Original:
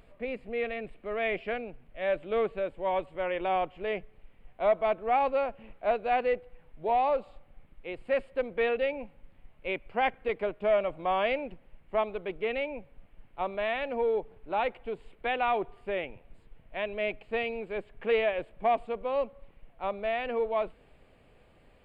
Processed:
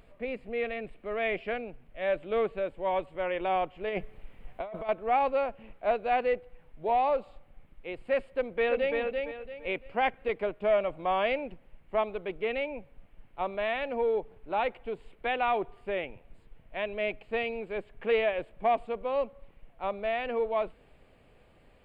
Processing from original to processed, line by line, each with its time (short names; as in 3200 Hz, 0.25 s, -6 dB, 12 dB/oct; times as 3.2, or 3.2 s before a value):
3.89–4.89 negative-ratio compressor -35 dBFS
8.32–8.97 echo throw 0.34 s, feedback 30%, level -3.5 dB